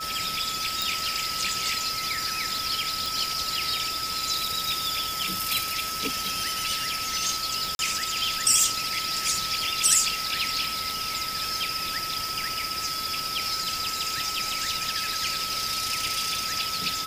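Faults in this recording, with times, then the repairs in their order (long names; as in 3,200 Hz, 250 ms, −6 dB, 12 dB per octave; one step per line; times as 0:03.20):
surface crackle 23 per second −33 dBFS
whistle 1,300 Hz −33 dBFS
0:00.82: click
0:03.06: click
0:07.75–0:07.79: drop-out 41 ms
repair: click removal
notch filter 1,300 Hz, Q 30
repair the gap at 0:07.75, 41 ms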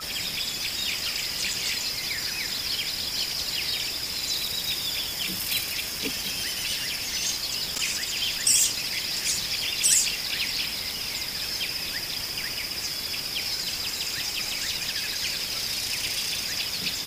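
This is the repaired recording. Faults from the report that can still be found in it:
none of them is left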